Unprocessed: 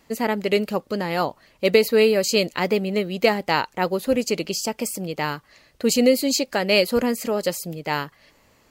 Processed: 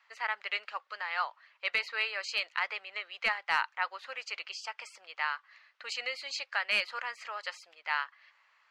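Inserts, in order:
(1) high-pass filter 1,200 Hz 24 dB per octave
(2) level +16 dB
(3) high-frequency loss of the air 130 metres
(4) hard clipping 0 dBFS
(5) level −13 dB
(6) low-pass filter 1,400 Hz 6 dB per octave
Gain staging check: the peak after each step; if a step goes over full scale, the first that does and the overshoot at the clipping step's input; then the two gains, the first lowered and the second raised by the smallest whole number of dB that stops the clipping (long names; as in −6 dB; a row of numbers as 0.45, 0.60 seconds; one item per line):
−7.0, +9.0, +6.5, 0.0, −13.0, −15.5 dBFS
step 2, 6.5 dB
step 2 +9 dB, step 5 −6 dB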